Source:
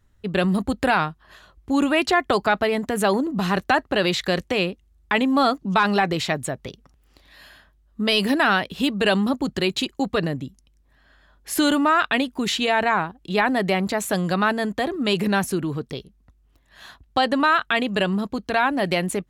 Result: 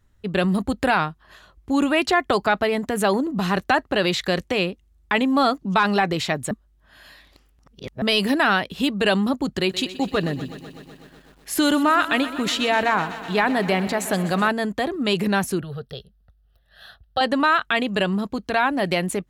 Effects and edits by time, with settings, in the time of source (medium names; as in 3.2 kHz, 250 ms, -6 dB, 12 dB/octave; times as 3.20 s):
6.51–8.02 s: reverse
9.57–14.49 s: bit-crushed delay 125 ms, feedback 80%, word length 8-bit, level -15 dB
15.61–17.21 s: static phaser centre 1.5 kHz, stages 8